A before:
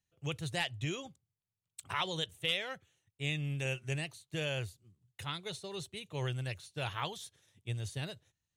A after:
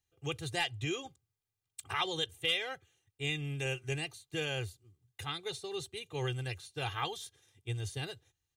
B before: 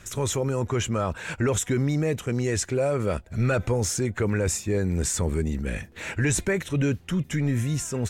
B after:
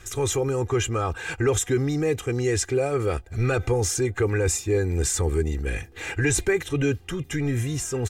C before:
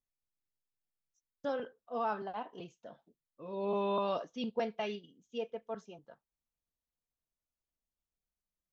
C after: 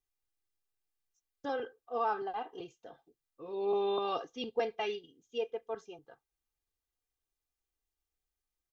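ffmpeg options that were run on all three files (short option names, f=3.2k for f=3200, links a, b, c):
-af "aecho=1:1:2.5:0.71"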